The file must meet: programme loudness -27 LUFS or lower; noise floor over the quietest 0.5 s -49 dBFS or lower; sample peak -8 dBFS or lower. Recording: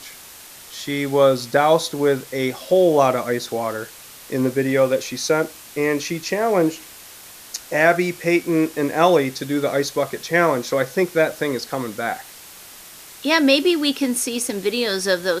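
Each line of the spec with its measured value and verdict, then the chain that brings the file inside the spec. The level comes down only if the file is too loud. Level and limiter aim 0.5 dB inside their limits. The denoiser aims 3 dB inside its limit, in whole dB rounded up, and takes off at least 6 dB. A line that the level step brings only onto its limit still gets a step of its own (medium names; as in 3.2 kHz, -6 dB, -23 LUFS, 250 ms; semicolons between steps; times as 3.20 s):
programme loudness -20.0 LUFS: fail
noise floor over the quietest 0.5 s -42 dBFS: fail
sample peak -2.5 dBFS: fail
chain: trim -7.5 dB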